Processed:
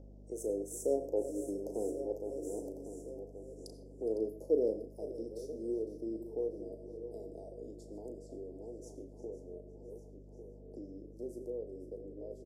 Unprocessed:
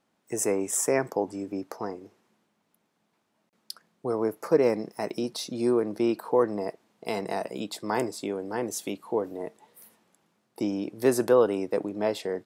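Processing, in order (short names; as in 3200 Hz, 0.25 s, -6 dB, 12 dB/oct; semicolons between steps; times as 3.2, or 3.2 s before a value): regenerating reverse delay 0.558 s, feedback 54%, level -13 dB; Doppler pass-by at 2.52, 10 m/s, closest 3.4 m; resonant high shelf 3000 Hz -9.5 dB, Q 3; upward compressor, threshold -44 dBFS; elliptic band-stop 550–5300 Hz, stop band 50 dB; low-pass opened by the level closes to 2800 Hz, open at -48 dBFS; HPF 280 Hz 24 dB/oct; hum 50 Hz, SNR 12 dB; doubler 36 ms -9 dB; on a send: feedback echo 0.507 s, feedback 40%, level -15 dB; on the sum: reverb RT60 0.40 s, pre-delay 45 ms, DRR 13 dB; gain +7.5 dB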